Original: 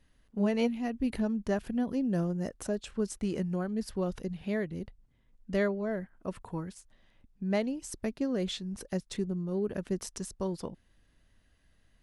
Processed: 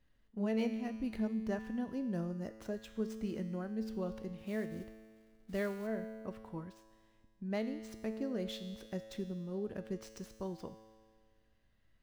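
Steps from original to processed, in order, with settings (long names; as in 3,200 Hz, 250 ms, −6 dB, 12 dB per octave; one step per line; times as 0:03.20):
running median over 5 samples
0:04.38–0:05.87: log-companded quantiser 6 bits
tuned comb filter 110 Hz, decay 1.8 s, mix 80%
level +5.5 dB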